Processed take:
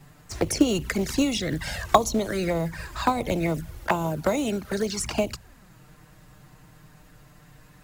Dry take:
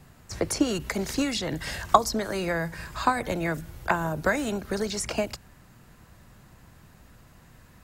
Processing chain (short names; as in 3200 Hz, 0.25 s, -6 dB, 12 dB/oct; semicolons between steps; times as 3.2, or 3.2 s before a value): 3.84–4.99 low shelf 82 Hz -10 dB; envelope flanger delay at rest 8 ms, full sweep at -24 dBFS; in parallel at -3.5 dB: short-mantissa float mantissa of 2-bit